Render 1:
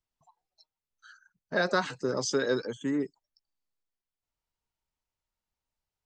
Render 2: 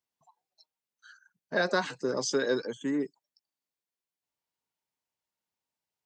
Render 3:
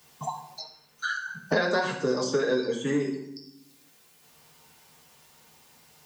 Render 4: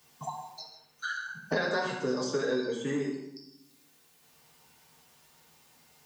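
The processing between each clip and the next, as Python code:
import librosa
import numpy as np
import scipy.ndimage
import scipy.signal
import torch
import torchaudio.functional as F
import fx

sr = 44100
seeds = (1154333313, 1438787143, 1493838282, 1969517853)

y1 = scipy.signal.sosfilt(scipy.signal.butter(2, 160.0, 'highpass', fs=sr, output='sos'), x)
y1 = fx.notch(y1, sr, hz=1300.0, q=14.0)
y2 = fx.rev_fdn(y1, sr, rt60_s=0.57, lf_ratio=1.35, hf_ratio=0.9, size_ms=39.0, drr_db=-1.5)
y2 = fx.band_squash(y2, sr, depth_pct=100)
y3 = fx.dmg_crackle(y2, sr, seeds[0], per_s=150.0, level_db=-58.0)
y3 = fx.rev_gated(y3, sr, seeds[1], gate_ms=190, shape='flat', drr_db=6.5)
y3 = F.gain(torch.from_numpy(y3), -5.0).numpy()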